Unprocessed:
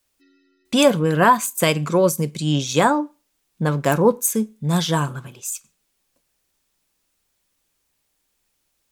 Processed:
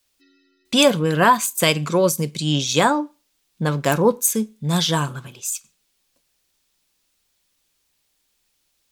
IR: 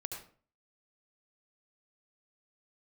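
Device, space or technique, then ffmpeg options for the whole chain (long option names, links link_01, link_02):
presence and air boost: -af "equalizer=frequency=4000:width_type=o:width=1.6:gain=6,highshelf=frequency=11000:gain=3,volume=-1dB"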